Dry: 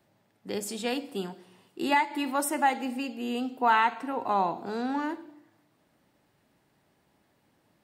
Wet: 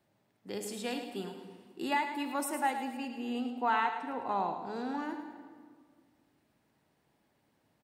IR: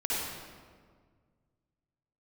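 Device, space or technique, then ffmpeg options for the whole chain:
compressed reverb return: -filter_complex "[0:a]asettb=1/sr,asplit=3[link_01][link_02][link_03];[link_01]atrim=end=2.974[link_04];[link_02]atrim=start=2.97:end=4.76,asetpts=PTS-STARTPTS,afade=type=in:duration=0.004:curve=qsin,afade=type=out:start_time=1.786:duration=0.004:curve=qsin,highshelf=frequency=9200:gain=-8.5[link_05];[link_03]atrim=start=4.756[link_06];[link_04][link_05]acrossfade=duration=0.004:curve1=hsin:curve2=qsin[link_07];[link_07][link_06]acrossfade=duration=0.004:curve1=qsin:curve2=hsin,asplit=2[link_08][link_09];[1:a]atrim=start_sample=2205[link_10];[link_09][link_10]afir=irnorm=-1:irlink=0,acompressor=threshold=-21dB:ratio=6,volume=-14.5dB[link_11];[link_08][link_11]amix=inputs=2:normalize=0,aecho=1:1:108|216|324|432:0.335|0.134|0.0536|0.0214,volume=-7.5dB"

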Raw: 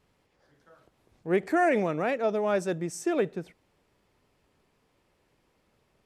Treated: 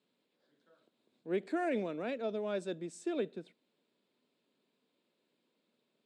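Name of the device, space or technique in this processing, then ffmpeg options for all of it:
television speaker: -af "highpass=frequency=190:width=0.5412,highpass=frequency=190:width=1.3066,equalizer=frequency=240:width_type=q:width=4:gain=5,equalizer=frequency=810:width_type=q:width=4:gain=-8,equalizer=frequency=1200:width_type=q:width=4:gain=-6,equalizer=frequency=1900:width_type=q:width=4:gain=-6,equalizer=frequency=3800:width_type=q:width=4:gain=9,equalizer=frequency=5900:width_type=q:width=4:gain=-10,lowpass=frequency=8700:width=0.5412,lowpass=frequency=8700:width=1.3066,volume=-8.5dB"

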